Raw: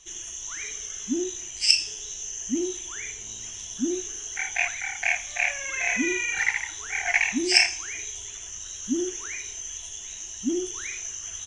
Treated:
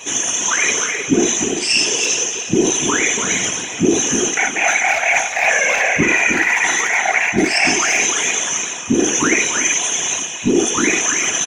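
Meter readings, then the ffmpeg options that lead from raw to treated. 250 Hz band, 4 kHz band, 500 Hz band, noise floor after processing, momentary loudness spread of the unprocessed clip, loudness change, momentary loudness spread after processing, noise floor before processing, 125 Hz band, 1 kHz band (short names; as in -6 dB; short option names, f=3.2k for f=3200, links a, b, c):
+12.0 dB, +7.5 dB, +14.5 dB, -26 dBFS, 14 LU, +11.5 dB, 4 LU, -39 dBFS, n/a, +18.0 dB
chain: -filter_complex "[0:a]highpass=f=190:w=0.5412,highpass=f=190:w=1.3066,equalizer=f=5.1k:t=o:w=2.3:g=-13,aecho=1:1:4.1:0.79,areverse,acompressor=threshold=-38dB:ratio=8,areverse,aeval=exprs='val(0)+0.000562*sin(2*PI*2500*n/s)':c=same,asplit=2[a][b];[b]adelay=300,highpass=300,lowpass=3.4k,asoftclip=type=hard:threshold=-37dB,volume=-6dB[c];[a][c]amix=inputs=2:normalize=0,apsyclip=35.5dB,asplit=2[d][e];[e]aecho=0:1:342|684:0.282|0.0479[f];[d][f]amix=inputs=2:normalize=0,afftfilt=real='hypot(re,im)*cos(2*PI*random(0))':imag='hypot(re,im)*sin(2*PI*random(1))':win_size=512:overlap=0.75,volume=-3dB"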